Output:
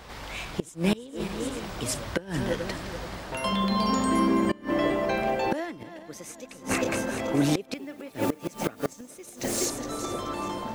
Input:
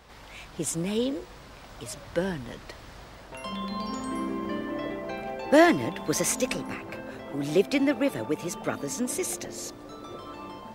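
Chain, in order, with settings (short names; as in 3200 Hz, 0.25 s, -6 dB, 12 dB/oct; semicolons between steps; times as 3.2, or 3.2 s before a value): regenerating reverse delay 0.214 s, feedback 59%, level -11.5 dB; 7.74–9.66 requantised 8-bit, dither triangular; flipped gate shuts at -20 dBFS, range -24 dB; gain +8 dB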